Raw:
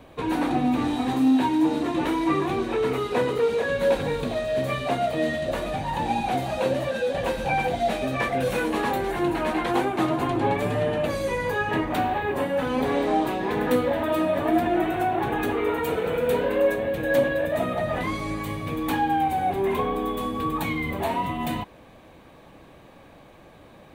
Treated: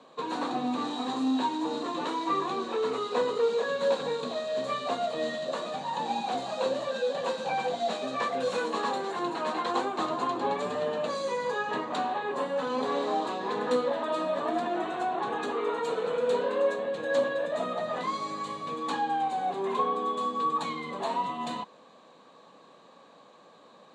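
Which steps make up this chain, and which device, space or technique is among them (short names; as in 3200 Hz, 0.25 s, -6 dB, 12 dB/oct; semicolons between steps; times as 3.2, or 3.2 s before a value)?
television speaker (speaker cabinet 190–8000 Hz, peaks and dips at 320 Hz -6 dB, 480 Hz +4 dB, 1100 Hz +9 dB, 2200 Hz -6 dB, 4100 Hz +10 dB, 7200 Hz +9 dB); gain -6.5 dB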